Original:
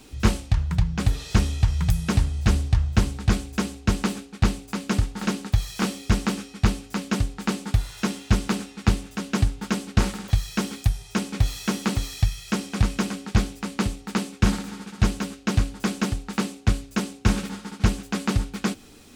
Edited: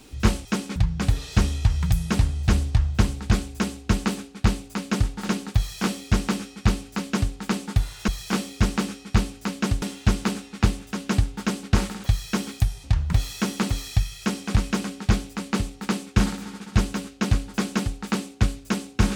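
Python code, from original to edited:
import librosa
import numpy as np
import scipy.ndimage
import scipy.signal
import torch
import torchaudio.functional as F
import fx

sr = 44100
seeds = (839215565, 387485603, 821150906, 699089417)

y = fx.edit(x, sr, fx.swap(start_s=0.45, length_s=0.29, other_s=11.08, other_length_s=0.31),
    fx.duplicate(start_s=5.57, length_s=1.74, to_s=8.06), tone=tone)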